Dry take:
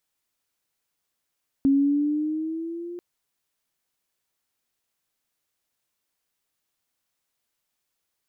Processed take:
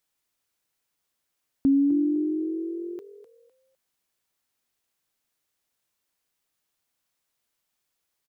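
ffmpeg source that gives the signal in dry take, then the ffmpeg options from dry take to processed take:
-f lavfi -i "aevalsrc='pow(10,(-15-18*t/1.34)/20)*sin(2*PI*272*1.34/(4.5*log(2)/12)*(exp(4.5*log(2)/12*t/1.34)-1))':duration=1.34:sample_rate=44100"
-filter_complex "[0:a]asplit=4[link_01][link_02][link_03][link_04];[link_02]adelay=253,afreqshift=60,volume=-13.5dB[link_05];[link_03]adelay=506,afreqshift=120,volume=-24dB[link_06];[link_04]adelay=759,afreqshift=180,volume=-34.4dB[link_07];[link_01][link_05][link_06][link_07]amix=inputs=4:normalize=0"

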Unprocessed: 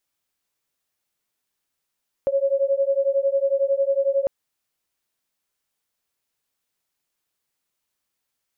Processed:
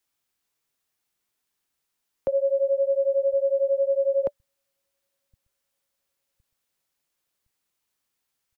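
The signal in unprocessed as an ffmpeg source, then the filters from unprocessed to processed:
-f lavfi -i "aevalsrc='0.0891*(sin(2*PI*545*t)+sin(2*PI*556*t))':duration=2:sample_rate=44100"
-filter_complex "[0:a]bandreject=frequency=580:width=15,acrossover=split=120|310[link_01][link_02][link_03];[link_01]aecho=1:1:1063|2126|3189|4252:0.251|0.108|0.0464|0.02[link_04];[link_04][link_02][link_03]amix=inputs=3:normalize=0"

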